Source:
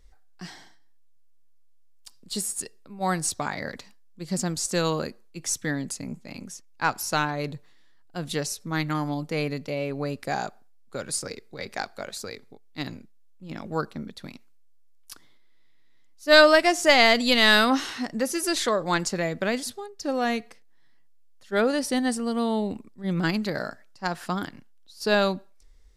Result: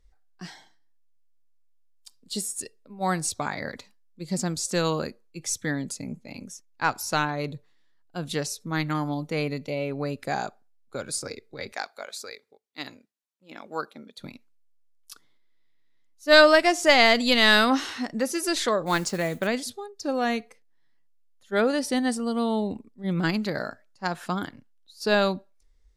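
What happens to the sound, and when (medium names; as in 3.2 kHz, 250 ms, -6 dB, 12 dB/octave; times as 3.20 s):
11.72–14.18 s: high-pass 610 Hz 6 dB/octave
18.86–19.47 s: modulation noise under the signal 19 dB
whole clip: spectral noise reduction 8 dB; treble shelf 9.7 kHz -4 dB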